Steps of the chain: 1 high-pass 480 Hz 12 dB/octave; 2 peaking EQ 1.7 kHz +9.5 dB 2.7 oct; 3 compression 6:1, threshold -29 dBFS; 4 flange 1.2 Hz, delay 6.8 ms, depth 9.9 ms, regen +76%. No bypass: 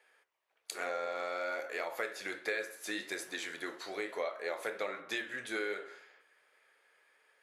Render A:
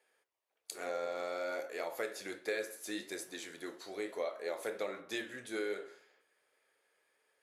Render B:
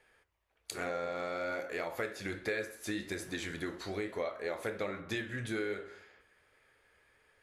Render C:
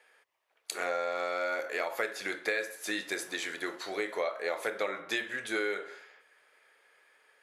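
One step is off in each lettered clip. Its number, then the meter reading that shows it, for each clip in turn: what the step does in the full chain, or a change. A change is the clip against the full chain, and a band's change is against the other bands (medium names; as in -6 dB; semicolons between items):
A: 2, 2 kHz band -5.5 dB; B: 1, 250 Hz band +7.5 dB; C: 4, loudness change +4.5 LU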